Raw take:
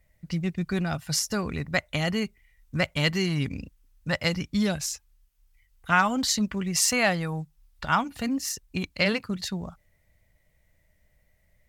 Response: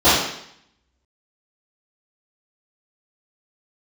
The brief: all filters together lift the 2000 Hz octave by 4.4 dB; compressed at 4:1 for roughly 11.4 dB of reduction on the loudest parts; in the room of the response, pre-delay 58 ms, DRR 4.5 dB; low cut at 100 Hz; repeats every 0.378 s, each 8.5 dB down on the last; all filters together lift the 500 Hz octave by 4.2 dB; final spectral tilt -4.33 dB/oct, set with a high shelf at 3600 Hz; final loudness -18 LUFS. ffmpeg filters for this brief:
-filter_complex "[0:a]highpass=100,equalizer=f=500:t=o:g=5,equalizer=f=2k:t=o:g=6.5,highshelf=f=3.6k:g=-5,acompressor=threshold=-29dB:ratio=4,aecho=1:1:378|756|1134|1512:0.376|0.143|0.0543|0.0206,asplit=2[a][b];[1:a]atrim=start_sample=2205,adelay=58[c];[b][c]afir=irnorm=-1:irlink=0,volume=-30.5dB[d];[a][d]amix=inputs=2:normalize=0,volume=13.5dB"

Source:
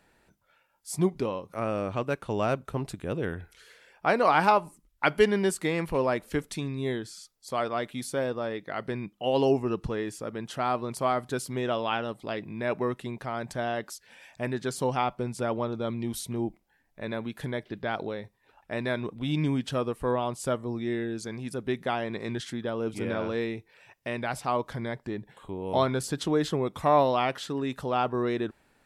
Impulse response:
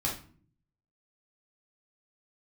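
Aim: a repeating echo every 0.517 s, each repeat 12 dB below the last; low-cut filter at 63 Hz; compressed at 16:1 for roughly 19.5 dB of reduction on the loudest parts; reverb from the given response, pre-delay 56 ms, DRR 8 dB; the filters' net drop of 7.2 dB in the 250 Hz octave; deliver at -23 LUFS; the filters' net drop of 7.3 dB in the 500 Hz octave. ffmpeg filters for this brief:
-filter_complex "[0:a]highpass=63,equalizer=f=250:t=o:g=-7,equalizer=f=500:t=o:g=-7.5,acompressor=threshold=-39dB:ratio=16,aecho=1:1:517|1034|1551:0.251|0.0628|0.0157,asplit=2[a][b];[1:a]atrim=start_sample=2205,adelay=56[c];[b][c]afir=irnorm=-1:irlink=0,volume=-14dB[d];[a][d]amix=inputs=2:normalize=0,volume=20dB"

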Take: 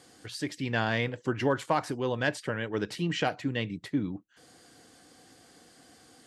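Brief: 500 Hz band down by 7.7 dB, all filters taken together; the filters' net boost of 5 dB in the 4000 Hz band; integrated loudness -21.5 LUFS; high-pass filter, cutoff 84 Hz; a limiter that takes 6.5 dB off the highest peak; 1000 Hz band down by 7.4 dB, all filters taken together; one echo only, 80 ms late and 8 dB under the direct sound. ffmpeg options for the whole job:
-af "highpass=84,equalizer=f=500:t=o:g=-8,equalizer=f=1k:t=o:g=-7.5,equalizer=f=4k:t=o:g=7.5,alimiter=limit=-20.5dB:level=0:latency=1,aecho=1:1:80:0.398,volume=12dB"

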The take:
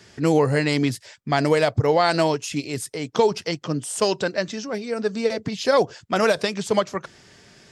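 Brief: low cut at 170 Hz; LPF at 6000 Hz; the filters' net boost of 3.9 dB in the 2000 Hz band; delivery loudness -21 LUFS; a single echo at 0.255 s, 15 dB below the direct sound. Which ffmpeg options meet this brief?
-af "highpass=170,lowpass=6k,equalizer=f=2k:t=o:g=5,aecho=1:1:255:0.178,volume=1dB"

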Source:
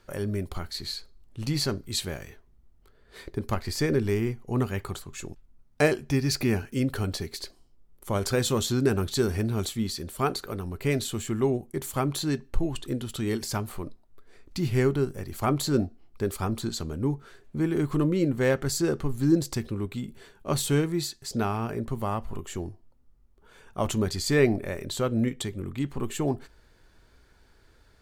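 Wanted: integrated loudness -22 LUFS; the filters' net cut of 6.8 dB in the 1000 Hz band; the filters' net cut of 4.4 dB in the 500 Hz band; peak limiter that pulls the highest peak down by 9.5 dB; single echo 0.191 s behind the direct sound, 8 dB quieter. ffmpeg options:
-af "equalizer=f=500:t=o:g=-4.5,equalizer=f=1k:t=o:g=-8,alimiter=limit=-20.5dB:level=0:latency=1,aecho=1:1:191:0.398,volume=10dB"

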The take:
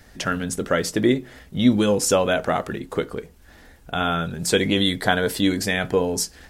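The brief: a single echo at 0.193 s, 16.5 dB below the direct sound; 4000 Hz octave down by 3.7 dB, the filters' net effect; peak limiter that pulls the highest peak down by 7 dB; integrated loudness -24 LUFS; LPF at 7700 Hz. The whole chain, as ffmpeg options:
-af "lowpass=7.7k,equalizer=f=4k:t=o:g=-4.5,alimiter=limit=-12.5dB:level=0:latency=1,aecho=1:1:193:0.15,volume=0.5dB"

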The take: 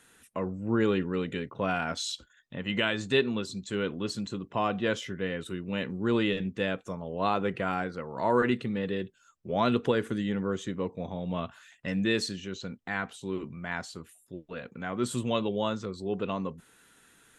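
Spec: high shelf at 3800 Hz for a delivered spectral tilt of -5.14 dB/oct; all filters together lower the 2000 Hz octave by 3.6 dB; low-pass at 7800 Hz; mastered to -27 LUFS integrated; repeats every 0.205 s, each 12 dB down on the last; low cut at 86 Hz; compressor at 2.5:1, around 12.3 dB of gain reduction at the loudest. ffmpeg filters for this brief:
-af "highpass=86,lowpass=7.8k,equalizer=f=2k:t=o:g=-6,highshelf=f=3.8k:g=4,acompressor=threshold=-40dB:ratio=2.5,aecho=1:1:205|410|615:0.251|0.0628|0.0157,volume=13.5dB"

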